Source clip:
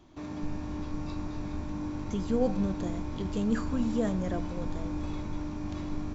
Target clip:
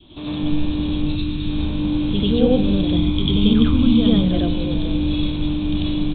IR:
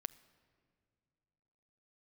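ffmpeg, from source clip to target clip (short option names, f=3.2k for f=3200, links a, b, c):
-filter_complex "[0:a]asettb=1/sr,asplit=3[a][b][c];[a]atrim=end=1.064[d];[b]atrim=start=1.06:end=1.49,asetpts=PTS-STARTPTS,afade=t=in:d=0.004:c=qsin,afade=t=out:st=0.426:d=0.004:c=qsin,equalizer=f=680:w=1:g=-12[e];[c]atrim=start=1.486[f];[d][e]acrossfade=d=0.004:c1=hsin:c2=qsin[g];[g][f]acrossfade=d=0.004:c1=qsin:c2=hsin,asettb=1/sr,asplit=3[h][i][j];[h]atrim=end=2.874[k];[i]atrim=start=2.87:end=4.14,asetpts=PTS-STARTPTS,afade=t=in:d=0.004:c=qsin,afade=t=out:st=1.266:d=0.004:c=qsin,aecho=1:1:0.9:0.45,atrim=end_sample=56007[l];[j]atrim=start=4.136[m];[k][l]acrossfade=d=0.004:c1=hsin:c2=qsin[n];[n][m]acrossfade=d=0.004:c1=qsin:c2=hsin,adynamicequalizer=threshold=0.00355:dfrequency=1000:dqfactor=0.99:tfrequency=1000:tqfactor=0.99:attack=5:release=100:ratio=0.375:range=3:mode=cutabove:tftype=bell,acrossover=split=640[o][p];[o]acontrast=32[q];[q][p]amix=inputs=2:normalize=0,aexciter=amount=10.8:drive=7.3:freq=3k,asplit=2[r][s];[1:a]atrim=start_sample=2205,adelay=94[t];[s][t]afir=irnorm=-1:irlink=0,volume=6.5dB[u];[r][u]amix=inputs=2:normalize=0,aresample=8000,aresample=44100,volume=3dB"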